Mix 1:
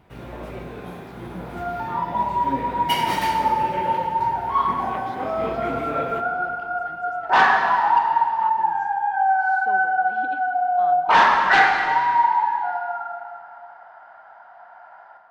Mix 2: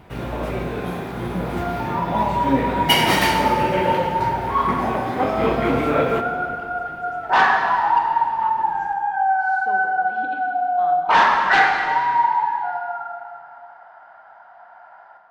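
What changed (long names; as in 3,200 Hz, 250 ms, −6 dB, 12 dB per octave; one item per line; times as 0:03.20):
speech: send +9.0 dB
first sound +9.0 dB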